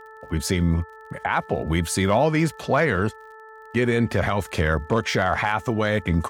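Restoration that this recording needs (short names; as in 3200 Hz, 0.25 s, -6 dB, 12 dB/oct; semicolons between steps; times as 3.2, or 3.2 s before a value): de-click; de-hum 438.8 Hz, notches 4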